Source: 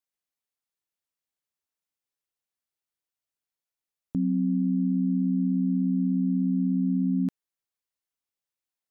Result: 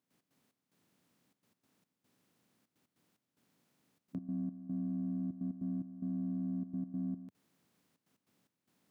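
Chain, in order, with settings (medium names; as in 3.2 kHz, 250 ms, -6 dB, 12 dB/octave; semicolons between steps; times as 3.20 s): spectral levelling over time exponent 0.6; high-pass 100 Hz 24 dB/octave; in parallel at -7 dB: saturation -27 dBFS, distortion -11 dB; on the sum: peak limiter -26.5 dBFS, peak gain reduction 9.5 dB; trance gate ".x.xx..xxxxxx" 147 bpm -12 dB; trim -5 dB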